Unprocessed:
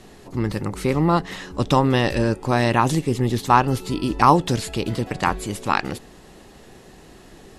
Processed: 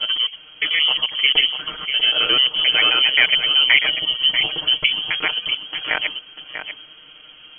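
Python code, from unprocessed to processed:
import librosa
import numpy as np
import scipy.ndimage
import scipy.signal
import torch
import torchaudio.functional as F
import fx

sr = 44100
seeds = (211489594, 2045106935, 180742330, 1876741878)

p1 = fx.block_reorder(x, sr, ms=88.0, group=7)
p2 = fx.peak_eq(p1, sr, hz=570.0, db=-6.0, octaves=2.7)
p3 = fx.freq_invert(p2, sr, carrier_hz=3200)
p4 = p3 + 0.96 * np.pad(p3, (int(6.5 * sr / 1000.0), 0))[:len(p3)]
p5 = p4 + fx.echo_single(p4, sr, ms=643, db=-9.0, dry=0)
y = p5 * 10.0 ** (1.0 / 20.0)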